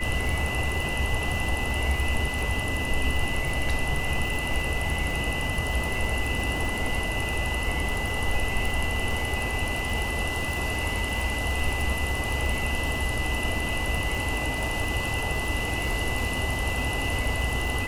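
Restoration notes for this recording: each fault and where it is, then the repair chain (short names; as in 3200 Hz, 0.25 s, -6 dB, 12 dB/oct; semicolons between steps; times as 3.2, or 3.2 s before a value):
crackle 59/s -30 dBFS
tone 2000 Hz -31 dBFS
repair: de-click; notch 2000 Hz, Q 30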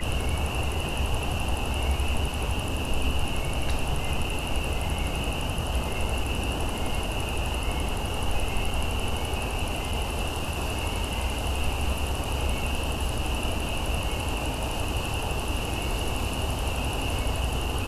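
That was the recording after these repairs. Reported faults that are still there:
none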